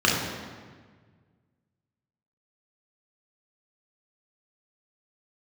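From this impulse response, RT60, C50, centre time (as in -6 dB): 1.6 s, 1.5 dB, 76 ms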